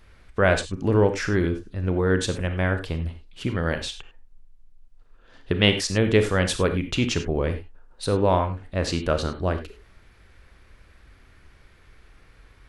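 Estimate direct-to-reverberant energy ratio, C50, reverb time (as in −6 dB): 7.5 dB, 9.5 dB, non-exponential decay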